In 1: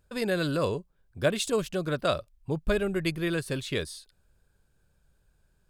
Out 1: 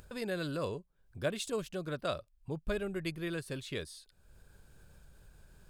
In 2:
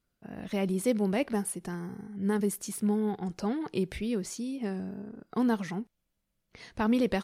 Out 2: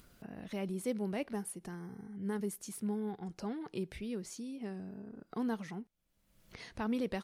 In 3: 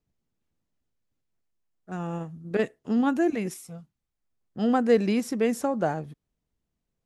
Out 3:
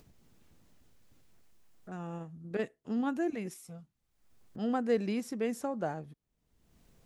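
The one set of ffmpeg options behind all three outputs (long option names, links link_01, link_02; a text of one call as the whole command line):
ffmpeg -i in.wav -af "acompressor=mode=upward:threshold=-32dB:ratio=2.5,volume=-8.5dB" out.wav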